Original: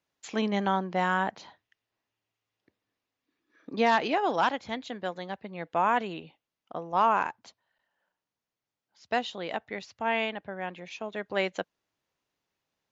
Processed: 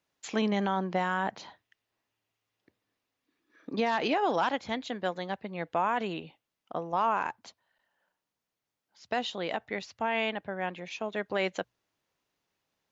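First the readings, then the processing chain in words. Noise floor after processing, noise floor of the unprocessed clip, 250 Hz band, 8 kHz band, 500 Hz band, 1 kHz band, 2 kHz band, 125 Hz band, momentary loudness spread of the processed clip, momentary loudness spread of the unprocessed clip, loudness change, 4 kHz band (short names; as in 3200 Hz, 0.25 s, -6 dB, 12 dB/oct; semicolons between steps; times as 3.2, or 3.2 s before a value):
under -85 dBFS, under -85 dBFS, 0.0 dB, n/a, -1.0 dB, -3.0 dB, -2.0 dB, 0.0 dB, 11 LU, 14 LU, -2.0 dB, -0.5 dB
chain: notches 60/120 Hz; limiter -20 dBFS, peak gain reduction 8 dB; gain +2 dB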